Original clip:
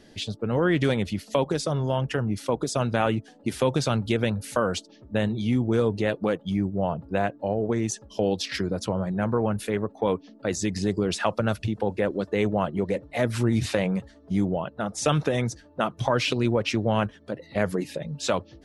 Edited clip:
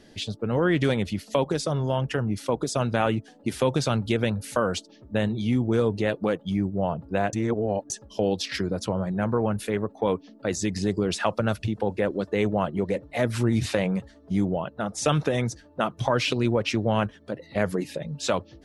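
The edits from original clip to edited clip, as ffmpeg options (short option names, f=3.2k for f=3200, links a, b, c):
-filter_complex "[0:a]asplit=3[a][b][c];[a]atrim=end=7.332[d];[b]atrim=start=7.328:end=7.902,asetpts=PTS-STARTPTS,areverse[e];[c]atrim=start=7.898[f];[d][e]acrossfade=d=0.004:c1=hsin:c2=hsin[g];[g][f]acrossfade=d=0.004:c1=hsin:c2=hsin"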